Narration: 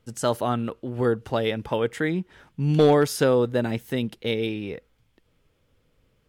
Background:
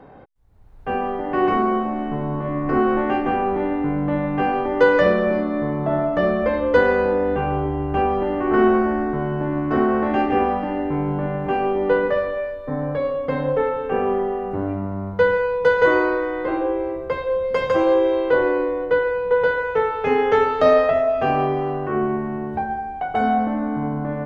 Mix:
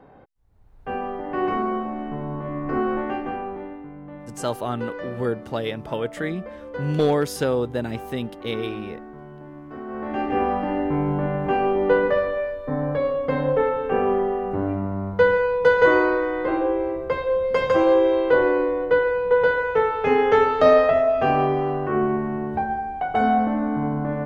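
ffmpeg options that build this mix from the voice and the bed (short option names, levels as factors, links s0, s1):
-filter_complex "[0:a]adelay=4200,volume=0.75[s0];[1:a]volume=4.22,afade=t=out:st=2.94:d=0.94:silence=0.237137,afade=t=in:st=9.84:d=0.86:silence=0.133352[s1];[s0][s1]amix=inputs=2:normalize=0"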